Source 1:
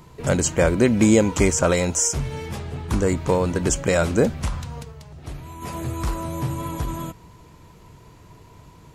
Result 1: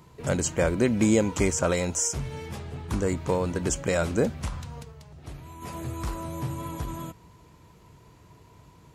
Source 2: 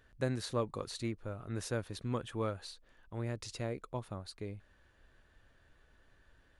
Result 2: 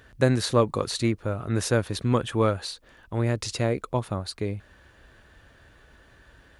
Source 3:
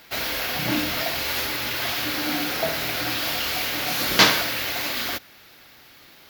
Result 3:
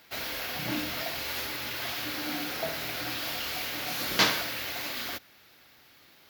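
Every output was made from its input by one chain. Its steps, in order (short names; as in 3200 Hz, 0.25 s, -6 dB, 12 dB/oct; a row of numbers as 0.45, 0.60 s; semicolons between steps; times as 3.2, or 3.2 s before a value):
HPF 41 Hz; normalise peaks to -9 dBFS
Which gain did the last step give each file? -5.5, +13.0, -8.0 dB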